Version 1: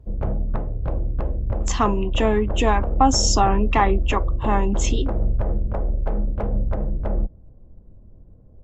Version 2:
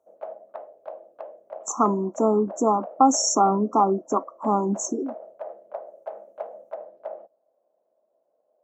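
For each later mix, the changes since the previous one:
speech: add linear-phase brick-wall band-stop 1,400–5,500 Hz
background: add four-pole ladder high-pass 580 Hz, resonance 70%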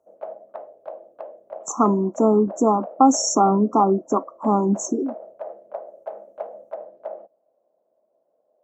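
master: add low-shelf EQ 430 Hz +6.5 dB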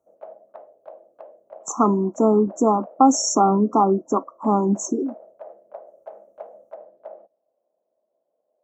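background −6.0 dB

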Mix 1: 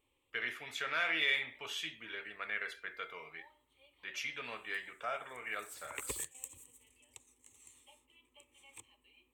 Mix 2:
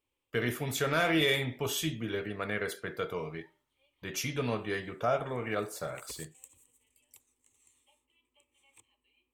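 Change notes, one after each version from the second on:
speech: remove resonant band-pass 2,200 Hz, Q 1.4
background −7.0 dB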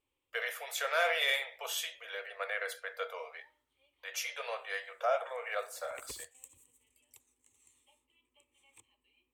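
speech: add Chebyshev high-pass with heavy ripple 480 Hz, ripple 3 dB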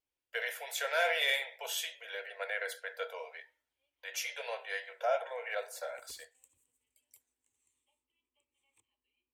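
speech: add Butterworth band-reject 1,200 Hz, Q 4.4
background −11.5 dB

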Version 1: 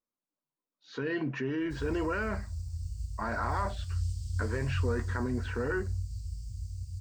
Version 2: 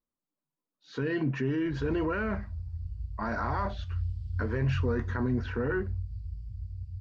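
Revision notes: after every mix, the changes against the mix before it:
speech: add low-shelf EQ 180 Hz +11 dB
background: add high-frequency loss of the air 420 metres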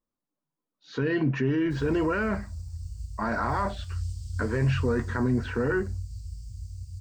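speech +4.0 dB
background: remove high-frequency loss of the air 420 metres

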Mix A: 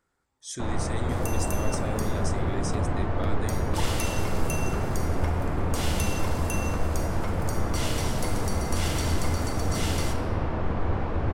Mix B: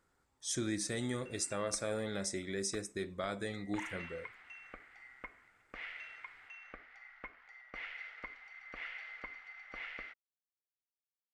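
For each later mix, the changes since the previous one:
first sound: muted
second sound: add transistor ladder low-pass 2,300 Hz, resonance 65%
reverb: off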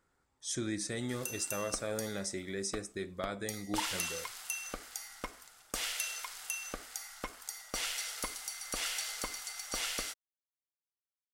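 background: remove transistor ladder low-pass 2,300 Hz, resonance 65%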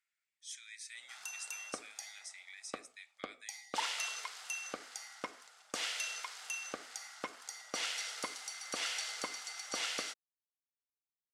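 speech: add four-pole ladder high-pass 2,000 Hz, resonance 55%
background: add band-pass filter 220–6,700 Hz

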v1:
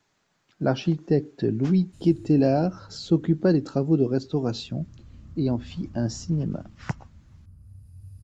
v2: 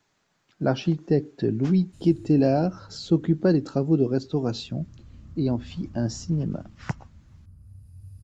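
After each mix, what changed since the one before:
nothing changed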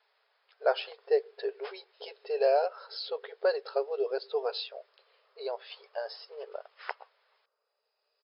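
master: add linear-phase brick-wall band-pass 400–5,300 Hz

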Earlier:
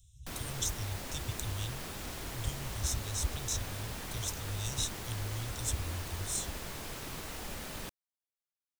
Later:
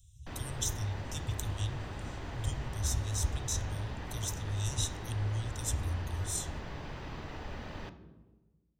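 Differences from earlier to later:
background: add high-frequency loss of the air 220 metres
reverb: on, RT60 1.2 s

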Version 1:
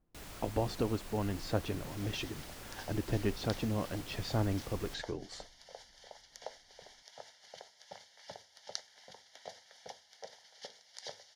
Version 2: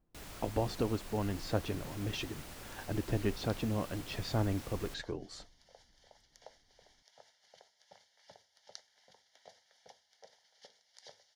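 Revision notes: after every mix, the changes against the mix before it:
second sound −9.5 dB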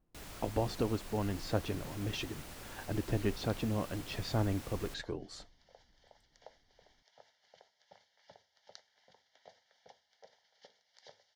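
second sound: add high-frequency loss of the air 110 metres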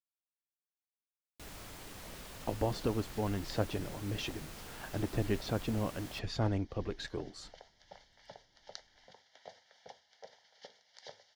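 speech: entry +2.05 s
first sound: entry +1.25 s
second sound +6.5 dB

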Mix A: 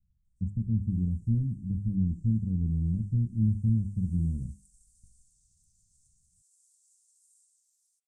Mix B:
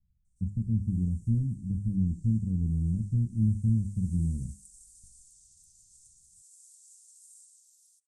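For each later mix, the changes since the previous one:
background +11.0 dB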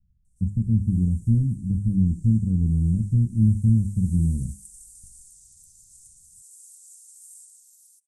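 speech +7.0 dB
background: remove high-frequency loss of the air 66 metres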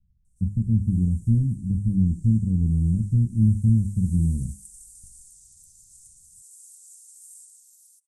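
speech: add high-frequency loss of the air 360 metres

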